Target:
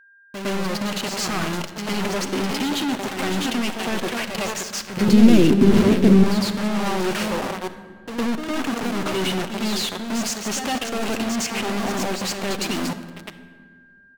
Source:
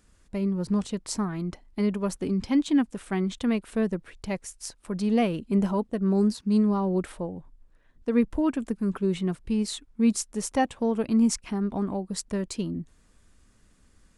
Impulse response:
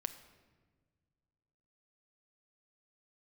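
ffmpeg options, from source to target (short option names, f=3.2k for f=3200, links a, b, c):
-filter_complex "[0:a]highpass=130,equalizer=f=460:t=q:w=4:g=-6,equalizer=f=1k:t=q:w=4:g=-4,equalizer=f=2.8k:t=q:w=4:g=10,equalizer=f=4.6k:t=q:w=4:g=6,equalizer=f=6.6k:t=q:w=4:g=6,lowpass=f=8.6k:w=0.5412,lowpass=f=8.6k:w=1.3066,aecho=1:1:569:0.188,acrusher=bits=5:mix=0:aa=0.000001,asplit=2[a][b];[b]highpass=f=720:p=1,volume=22dB,asoftclip=type=tanh:threshold=-10.5dB[c];[a][c]amix=inputs=2:normalize=0,lowpass=f=2k:p=1,volume=-6dB,asoftclip=type=tanh:threshold=-30dB,asettb=1/sr,asplit=3[d][e][f];[d]atrim=end=4.974[g];[e]atrim=start=4.97:end=6.13,asetpts=PTS-STARTPTS,afade=t=in:d=0.004:c=qsin,afade=t=out:st=1.156:d=0.004:c=qsin,lowshelf=f=490:t=q:w=1.5:g=11.5[h];[f]atrim=start=6.126[i];[g][h]acrossfade=d=0.004:c1=hsin:c2=qsin[j];[j][i]acrossfade=d=0.004:c1=qsin:c2=hsin,asplit=2[k][l];[1:a]atrim=start_sample=2205,asetrate=35280,aresample=44100,adelay=108[m];[l][m]afir=irnorm=-1:irlink=0,volume=7.5dB[n];[k][n]amix=inputs=2:normalize=0,aeval=exprs='val(0)+0.00316*sin(2*PI*1600*n/s)':c=same"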